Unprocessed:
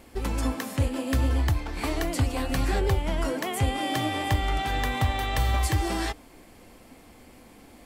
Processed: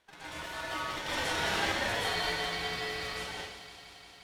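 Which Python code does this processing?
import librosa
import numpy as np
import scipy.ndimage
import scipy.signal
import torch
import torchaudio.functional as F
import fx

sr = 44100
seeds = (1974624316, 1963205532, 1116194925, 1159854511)

p1 = fx.doppler_pass(x, sr, speed_mps=8, closest_m=8.0, pass_at_s=2.64)
p2 = fx.stretch_vocoder(p1, sr, factor=0.54)
p3 = fx.sample_hold(p2, sr, seeds[0], rate_hz=1800.0, jitter_pct=0)
p4 = p2 + F.gain(torch.from_numpy(p3), -5.0).numpy()
p5 = fx.bandpass_q(p4, sr, hz=2400.0, q=0.51)
p6 = p5 + fx.echo_wet_highpass(p5, sr, ms=175, feedback_pct=83, hz=1500.0, wet_db=-12.5, dry=0)
p7 = fx.rev_plate(p6, sr, seeds[1], rt60_s=0.74, hf_ratio=0.9, predelay_ms=105, drr_db=-9.0)
p8 = p7 * np.sin(2.0 * np.pi * 1200.0 * np.arange(len(p7)) / sr)
y = F.gain(torch.from_numpy(p8), -1.5).numpy()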